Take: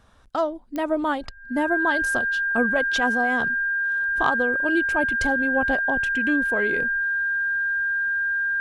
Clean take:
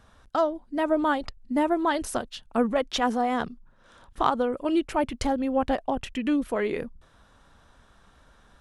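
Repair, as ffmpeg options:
ffmpeg -i in.wav -af "adeclick=threshold=4,bandreject=frequency=1600:width=30" out.wav

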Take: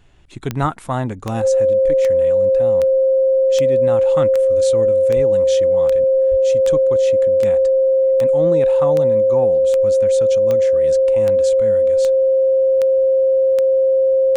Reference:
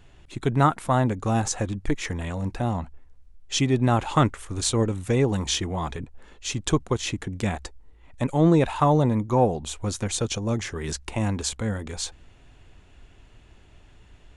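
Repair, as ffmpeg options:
ffmpeg -i in.wav -filter_complex "[0:a]adeclick=threshold=4,bandreject=frequency=530:width=30,asplit=3[link_01][link_02][link_03];[link_01]afade=type=out:start_time=0.6:duration=0.02[link_04];[link_02]highpass=frequency=140:width=0.5412,highpass=frequency=140:width=1.3066,afade=type=in:start_time=0.6:duration=0.02,afade=type=out:start_time=0.72:duration=0.02[link_05];[link_03]afade=type=in:start_time=0.72:duration=0.02[link_06];[link_04][link_05][link_06]amix=inputs=3:normalize=0,asplit=3[link_07][link_08][link_09];[link_07]afade=type=out:start_time=5.15:duration=0.02[link_10];[link_08]highpass=frequency=140:width=0.5412,highpass=frequency=140:width=1.3066,afade=type=in:start_time=5.15:duration=0.02,afade=type=out:start_time=5.27:duration=0.02[link_11];[link_09]afade=type=in:start_time=5.27:duration=0.02[link_12];[link_10][link_11][link_12]amix=inputs=3:normalize=0,asplit=3[link_13][link_14][link_15];[link_13]afade=type=out:start_time=6.3:duration=0.02[link_16];[link_14]highpass=frequency=140:width=0.5412,highpass=frequency=140:width=1.3066,afade=type=in:start_time=6.3:duration=0.02,afade=type=out:start_time=6.42:duration=0.02[link_17];[link_15]afade=type=in:start_time=6.42:duration=0.02[link_18];[link_16][link_17][link_18]amix=inputs=3:normalize=0,asetnsamples=nb_out_samples=441:pad=0,asendcmd='1.42 volume volume 5dB',volume=0dB" out.wav

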